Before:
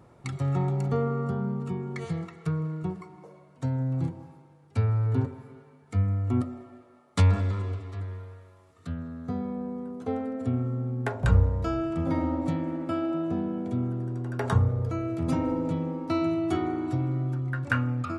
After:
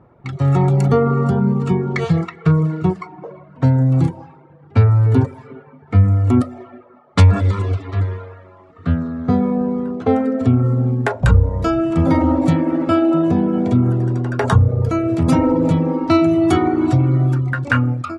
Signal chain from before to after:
low-pass that shuts in the quiet parts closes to 1,700 Hz, open at −24.5 dBFS
automatic gain control gain up to 13 dB
in parallel at +3 dB: brickwall limiter −11.5 dBFS, peak gain reduction 10 dB
on the sum: reverb reduction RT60 0.69 s
level −3 dB

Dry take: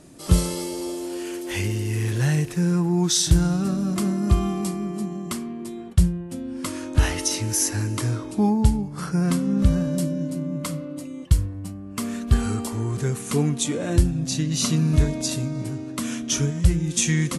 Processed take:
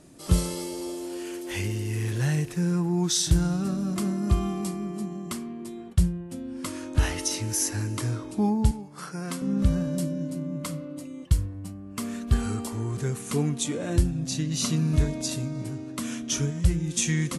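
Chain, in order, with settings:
0:08.71–0:09.42: high-pass filter 510 Hz 6 dB per octave
level −4 dB

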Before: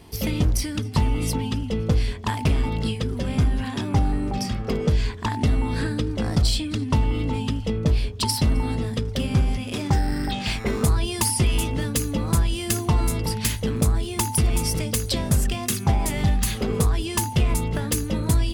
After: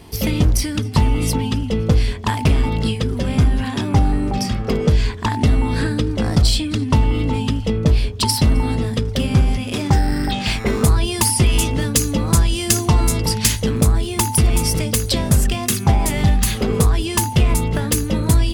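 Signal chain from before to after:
0:11.51–0:13.71: dynamic equaliser 6,200 Hz, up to +6 dB, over −40 dBFS, Q 1
level +5.5 dB

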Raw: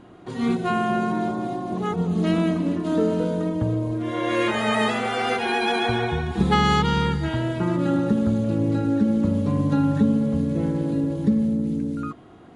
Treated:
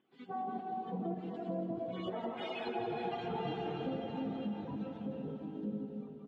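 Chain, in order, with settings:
time-frequency cells dropped at random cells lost 30%
source passing by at 0:05.48, 19 m/s, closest 8.6 metres
auto-filter band-pass square 0.84 Hz 710–3,100 Hz
parametric band 200 Hz +14.5 dB 2.4 octaves
on a send: feedback delay with all-pass diffusion 687 ms, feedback 46%, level −5.5 dB
on the sum: downward compressor 8 to 1, threshold −44 dBFS, peak gain reduction 22.5 dB
high-shelf EQ 2,400 Hz −10 dB
notch filter 590 Hz, Q 12
repeating echo 347 ms, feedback 45%, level −8 dB
time stretch by phase vocoder 0.5×
level +12 dB

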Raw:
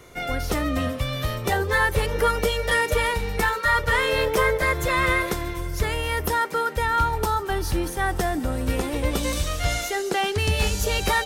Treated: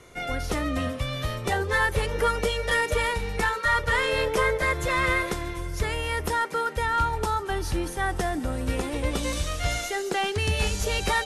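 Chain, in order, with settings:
stylus tracing distortion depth 0.031 ms
Chebyshev low-pass filter 12,000 Hz, order 10
level −2 dB

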